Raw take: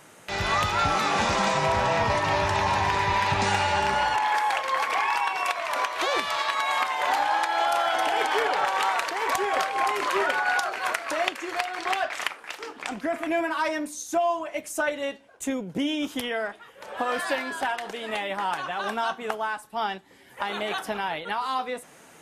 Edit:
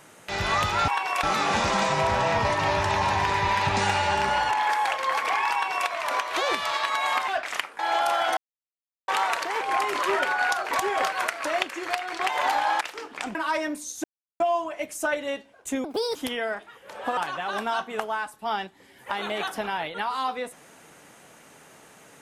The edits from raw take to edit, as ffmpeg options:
-filter_complex "[0:a]asplit=17[a][b][c][d][e][f][g][h][i][j][k][l][m][n][o][p][q];[a]atrim=end=0.882[r];[b]atrim=start=5.178:end=5.532[s];[c]atrim=start=0.878:end=6.932[t];[d]atrim=start=11.948:end=12.462[u];[e]atrim=start=7.448:end=8.03,asetpts=PTS-STARTPTS,afade=t=out:st=0.578:d=0.004:c=hsin[v];[f]atrim=start=8.03:end=8.74,asetpts=PTS-STARTPTS,volume=0[w];[g]atrim=start=8.74:end=9.272,asetpts=PTS-STARTPTS,afade=t=in:d=0.004:c=hsin[x];[h]atrim=start=9.678:end=10.782[y];[i]atrim=start=9.268:end=9.682[z];[j]atrim=start=10.778:end=11.952[aa];[k]atrim=start=6.928:end=7.452[ab];[l]atrim=start=12.458:end=13.002[ac];[m]atrim=start=13.458:end=14.15,asetpts=PTS-STARTPTS,afade=t=out:st=0.688:d=0.004:c=hsin,apad=pad_dur=0.36[ad];[n]atrim=start=14.15:end=15.594,asetpts=PTS-STARTPTS,afade=t=in:d=0.004:c=hsin[ae];[o]atrim=start=15.59:end=16.08,asetpts=PTS-STARTPTS,asetrate=69237,aresample=44100[af];[p]atrim=start=16.076:end=17.102[ag];[q]atrim=start=18.478[ah];[r][s]acrossfade=d=0.004:c1=hsin:c2=hsin[ai];[ai][t]acrossfade=d=0.004:c1=hsin:c2=hsin[aj];[aj][u]acrossfade=d=0.004:c1=hsin:c2=hsin[ak];[v][w][x]concat=n=3:v=0:a=1[al];[ak][al]acrossfade=d=0.004:c1=hsin:c2=hsin[am];[am][y]acrossfade=d=0.004:c1=hsin:c2=hsin[an];[an][z]acrossfade=d=0.004:c1=hsin:c2=hsin[ao];[ao][aa]acrossfade=d=0.004:c1=hsin:c2=hsin[ap];[ap][ab]acrossfade=d=0.004:c1=hsin:c2=hsin[aq];[aq][ac]acrossfade=d=0.004:c1=hsin:c2=hsin[ar];[ad][ae]concat=n=2:v=0:a=1[as];[ar][as]acrossfade=d=0.004:c1=hsin:c2=hsin[at];[at][af]acrossfade=d=0.004:c1=hsin:c2=hsin[au];[au][ag]acrossfade=d=0.004:c1=hsin:c2=hsin[av];[av][ah]acrossfade=d=0.004:c1=hsin:c2=hsin"

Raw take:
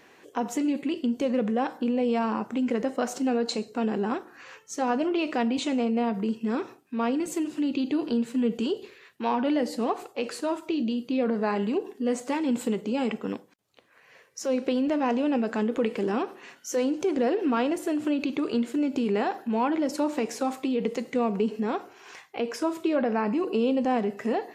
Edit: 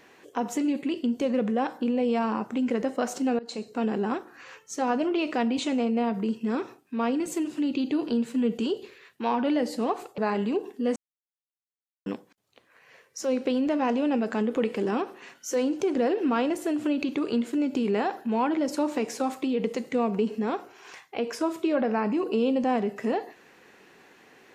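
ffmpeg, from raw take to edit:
-filter_complex "[0:a]asplit=5[a][b][c][d][e];[a]atrim=end=3.39,asetpts=PTS-STARTPTS,afade=t=out:st=3.386:d=0.004:c=hsin:silence=0.0794328[f];[b]atrim=start=3.39:end=10.182,asetpts=PTS-STARTPTS,afade=t=in:d=0.48:c=qsin:silence=0.0794328[g];[c]atrim=start=11.388:end=12.17,asetpts=PTS-STARTPTS,afade=t=out:st=0.778:d=0.004:c=hsin[h];[d]atrim=start=12.17:end=13.27,asetpts=PTS-STARTPTS,volume=0[i];[e]atrim=start=13.27,asetpts=PTS-STARTPTS,afade=t=in:d=0.004:c=hsin[j];[f][g]concat=n=2:v=0:a=1[k];[h][i][j]concat=n=3:v=0:a=1[l];[k][l]acrossfade=d=0.004:c1=hsin:c2=hsin"

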